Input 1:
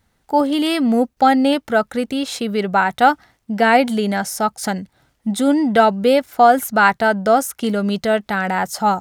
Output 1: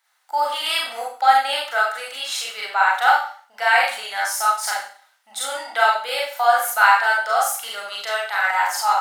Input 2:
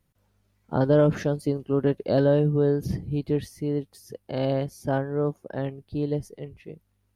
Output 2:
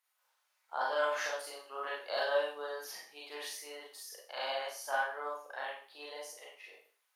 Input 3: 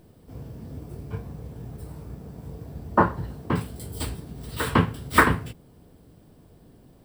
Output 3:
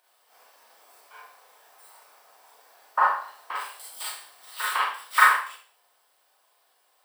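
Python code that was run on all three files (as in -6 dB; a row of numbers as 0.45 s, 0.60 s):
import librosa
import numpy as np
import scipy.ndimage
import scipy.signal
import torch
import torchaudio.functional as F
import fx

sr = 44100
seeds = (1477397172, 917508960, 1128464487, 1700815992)

p1 = scipy.signal.sosfilt(scipy.signal.butter(4, 850.0, 'highpass', fs=sr, output='sos'), x)
p2 = fx.rider(p1, sr, range_db=3, speed_s=2.0)
p3 = p1 + F.gain(torch.from_numpy(p2), 0.0).numpy()
p4 = fx.rev_schroeder(p3, sr, rt60_s=0.45, comb_ms=30, drr_db=-4.5)
y = F.gain(torch.from_numpy(p4), -9.5).numpy()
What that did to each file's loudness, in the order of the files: -2.5 LU, -12.0 LU, +1.0 LU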